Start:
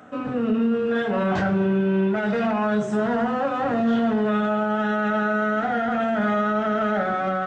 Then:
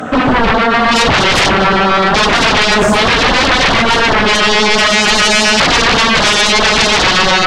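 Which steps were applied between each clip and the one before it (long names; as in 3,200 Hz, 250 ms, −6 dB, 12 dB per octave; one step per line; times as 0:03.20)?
mains-hum notches 60/120/180 Hz
sine wavefolder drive 15 dB, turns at −13 dBFS
auto-filter notch sine 7.6 Hz 220–2,500 Hz
level +7 dB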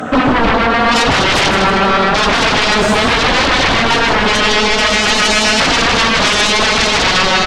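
on a send: echo with shifted repeats 157 ms, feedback 43%, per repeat +38 Hz, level −7 dB
on the sum: brickwall limiter −4 dBFS, peak gain reduction 5 dB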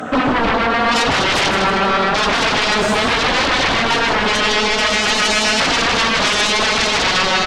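low-shelf EQ 160 Hz −4.5 dB
level −3.5 dB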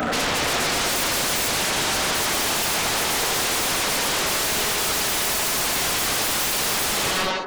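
fade-out on the ending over 0.68 s
wave folding −22.5 dBFS
delay with a band-pass on its return 91 ms, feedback 77%, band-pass 570 Hz, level −5 dB
level +4 dB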